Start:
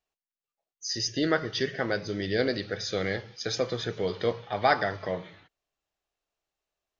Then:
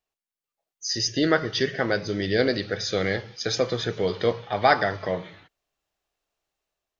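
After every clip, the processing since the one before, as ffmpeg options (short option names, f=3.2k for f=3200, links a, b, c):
-af "dynaudnorm=f=230:g=5:m=4.5dB"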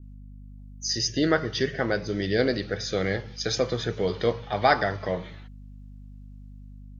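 -af "bass=f=250:g=2,treble=f=4k:g=3,aeval=exprs='val(0)+0.00891*(sin(2*PI*50*n/s)+sin(2*PI*2*50*n/s)/2+sin(2*PI*3*50*n/s)/3+sin(2*PI*4*50*n/s)/4+sin(2*PI*5*50*n/s)/5)':c=same,adynamicequalizer=threshold=0.01:dfrequency=4600:dqfactor=0.73:tfrequency=4600:tqfactor=0.73:attack=5:release=100:ratio=0.375:range=3:mode=cutabove:tftype=bell,volume=-1.5dB"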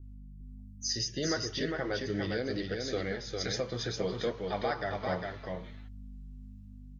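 -filter_complex "[0:a]flanger=delay=2.3:depth=7.7:regen=-39:speed=0.68:shape=triangular,alimiter=limit=-22.5dB:level=0:latency=1:release=382,asplit=2[a][b];[b]aecho=0:1:404:0.631[c];[a][c]amix=inputs=2:normalize=0"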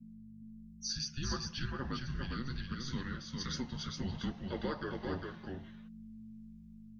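-af "afreqshift=-270,volume=-5dB"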